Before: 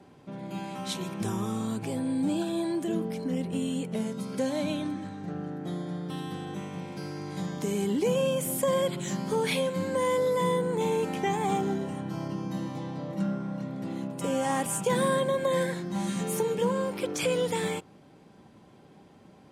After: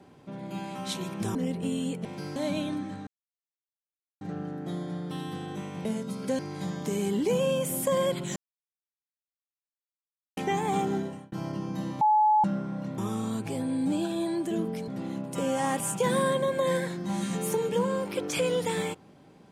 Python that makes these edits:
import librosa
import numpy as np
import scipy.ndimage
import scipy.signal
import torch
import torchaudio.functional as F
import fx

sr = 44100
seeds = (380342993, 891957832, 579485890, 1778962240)

y = fx.edit(x, sr, fx.move(start_s=1.35, length_s=1.9, to_s=13.74),
    fx.swap(start_s=3.95, length_s=0.54, other_s=6.84, other_length_s=0.31),
    fx.insert_silence(at_s=5.2, length_s=1.14),
    fx.silence(start_s=9.12, length_s=2.01),
    fx.fade_out_span(start_s=11.75, length_s=0.33),
    fx.bleep(start_s=12.77, length_s=0.43, hz=854.0, db=-18.0), tone=tone)